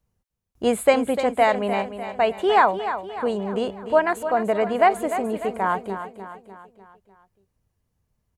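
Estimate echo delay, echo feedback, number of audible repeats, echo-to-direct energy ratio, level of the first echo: 299 ms, 50%, 5, -9.0 dB, -10.5 dB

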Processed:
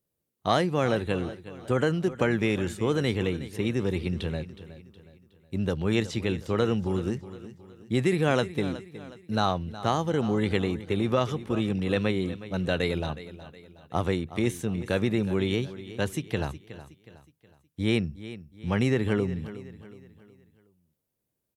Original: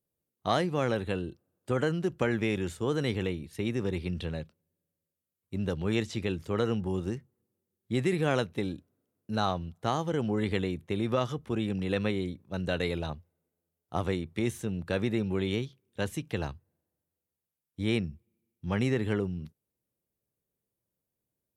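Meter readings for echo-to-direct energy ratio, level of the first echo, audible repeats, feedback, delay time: -14.0 dB, -15.0 dB, 3, 42%, 367 ms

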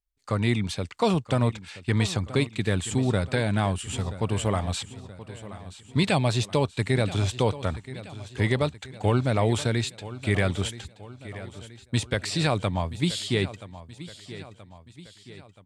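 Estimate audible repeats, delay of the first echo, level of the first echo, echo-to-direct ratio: 4, 977 ms, -15.5 dB, -14.0 dB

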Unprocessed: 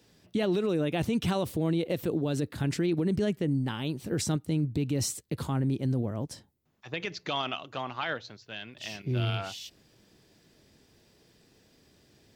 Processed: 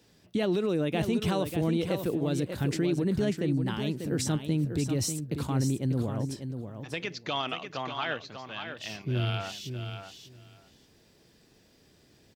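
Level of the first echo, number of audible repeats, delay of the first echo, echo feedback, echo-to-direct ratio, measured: -8.0 dB, 2, 592 ms, 15%, -8.0 dB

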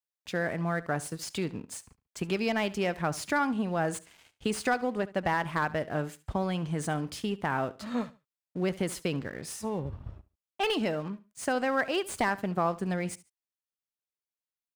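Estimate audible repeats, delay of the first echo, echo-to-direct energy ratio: 2, 71 ms, -18.0 dB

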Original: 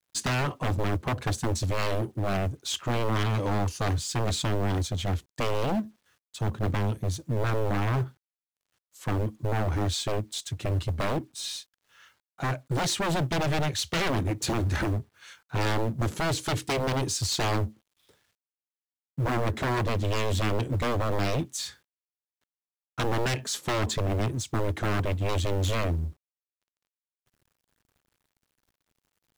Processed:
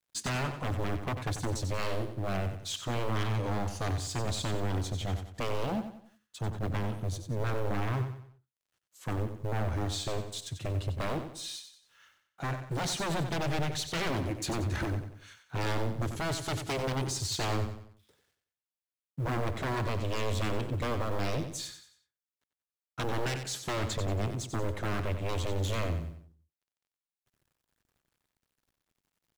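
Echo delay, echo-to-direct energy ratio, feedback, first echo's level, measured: 92 ms, -8.5 dB, 39%, -9.0 dB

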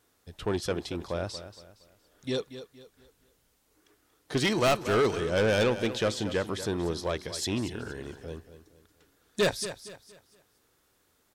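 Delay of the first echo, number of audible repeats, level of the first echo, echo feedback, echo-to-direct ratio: 233 ms, 3, -12.5 dB, 35%, -12.0 dB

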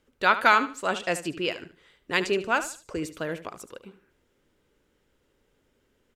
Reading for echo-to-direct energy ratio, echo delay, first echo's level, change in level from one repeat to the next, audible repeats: -12.5 dB, 74 ms, -13.0 dB, -11.5 dB, 2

